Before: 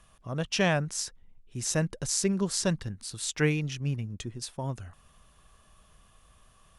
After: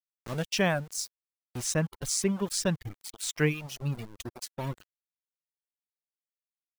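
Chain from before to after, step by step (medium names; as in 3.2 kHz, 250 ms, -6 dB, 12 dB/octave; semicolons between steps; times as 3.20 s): small samples zeroed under -35 dBFS; reverb removal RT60 1.3 s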